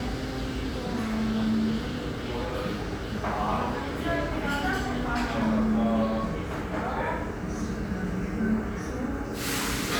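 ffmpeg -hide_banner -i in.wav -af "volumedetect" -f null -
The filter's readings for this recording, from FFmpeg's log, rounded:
mean_volume: -28.4 dB
max_volume: -14.9 dB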